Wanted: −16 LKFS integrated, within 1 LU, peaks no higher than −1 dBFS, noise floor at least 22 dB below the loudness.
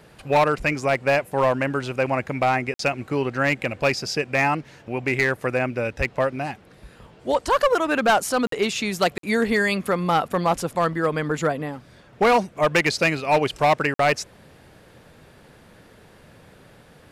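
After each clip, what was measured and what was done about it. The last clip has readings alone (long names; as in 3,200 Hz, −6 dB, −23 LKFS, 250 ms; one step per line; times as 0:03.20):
share of clipped samples 0.9%; peaks flattened at −12.5 dBFS; number of dropouts 4; longest dropout 53 ms; integrated loudness −22.5 LKFS; sample peak −12.5 dBFS; target loudness −16.0 LKFS
→ clipped peaks rebuilt −12.5 dBFS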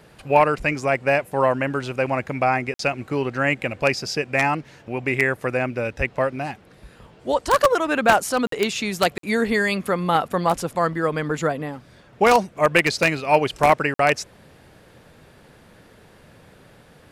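share of clipped samples 0.0%; number of dropouts 4; longest dropout 53 ms
→ repair the gap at 0:02.74/0:08.47/0:09.18/0:13.94, 53 ms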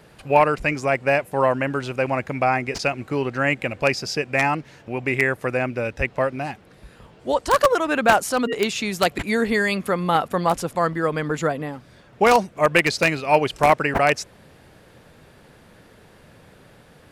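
number of dropouts 0; integrated loudness −21.5 LKFS; sample peak −3.5 dBFS; target loudness −16.0 LKFS
→ level +5.5 dB
brickwall limiter −1 dBFS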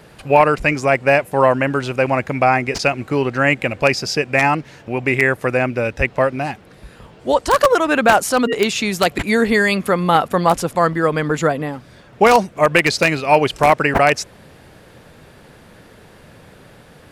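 integrated loudness −16.5 LKFS; sample peak −1.0 dBFS; background noise floor −45 dBFS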